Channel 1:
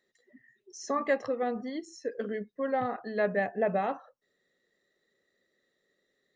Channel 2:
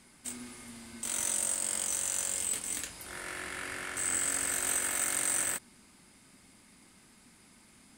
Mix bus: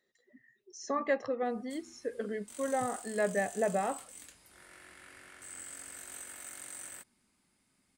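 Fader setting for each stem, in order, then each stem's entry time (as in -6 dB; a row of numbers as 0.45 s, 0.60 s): -2.5 dB, -15.0 dB; 0.00 s, 1.45 s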